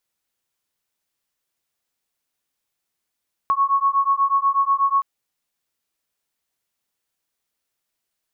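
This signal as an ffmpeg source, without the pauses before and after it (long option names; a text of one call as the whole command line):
ffmpeg -f lavfi -i "aevalsrc='0.112*(sin(2*PI*1100*t)+sin(2*PI*1108.2*t))':duration=1.52:sample_rate=44100" out.wav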